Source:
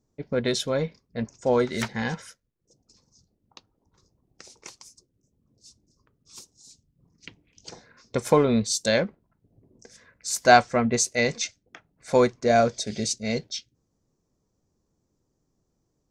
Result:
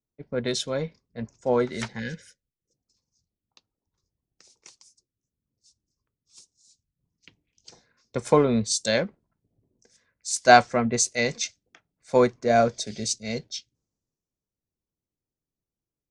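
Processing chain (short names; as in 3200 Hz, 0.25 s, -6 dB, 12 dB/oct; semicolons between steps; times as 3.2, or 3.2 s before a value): downsampling 22050 Hz; spectral gain 1.99–2.74, 590–1400 Hz -22 dB; three-band expander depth 40%; gain -2.5 dB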